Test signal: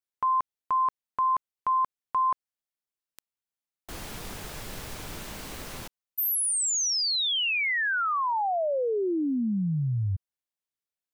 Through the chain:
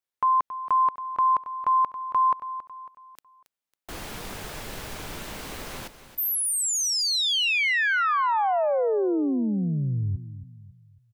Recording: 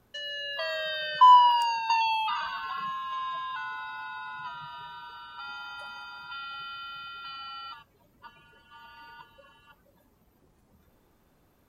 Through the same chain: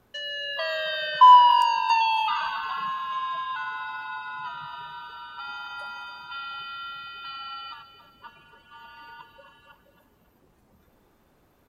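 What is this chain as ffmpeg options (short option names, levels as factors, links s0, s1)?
-filter_complex "[0:a]bass=f=250:g=-3,treble=f=4000:g=-3,asplit=2[s0][s1];[s1]aecho=0:1:275|550|825|1100:0.224|0.0918|0.0376|0.0154[s2];[s0][s2]amix=inputs=2:normalize=0,volume=1.5"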